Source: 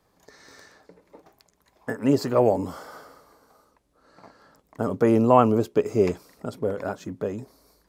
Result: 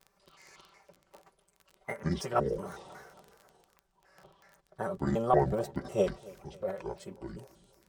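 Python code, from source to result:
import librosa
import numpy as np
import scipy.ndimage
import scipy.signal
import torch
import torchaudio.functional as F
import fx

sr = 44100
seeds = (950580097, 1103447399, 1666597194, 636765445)

y = fx.pitch_trill(x, sr, semitones=-9.0, every_ms=184)
y = fx.peak_eq(y, sr, hz=250.0, db=-13.5, octaves=0.55)
y = y + 0.63 * np.pad(y, (int(5.2 * sr / 1000.0), 0))[:len(y)]
y = fx.vibrato(y, sr, rate_hz=1.6, depth_cents=36.0)
y = fx.dmg_crackle(y, sr, seeds[0], per_s=17.0, level_db=-35.0)
y = fx.formant_shift(y, sr, semitones=3)
y = fx.echo_feedback(y, sr, ms=271, feedback_pct=51, wet_db=-21.5)
y = F.gain(torch.from_numpy(y), -7.0).numpy()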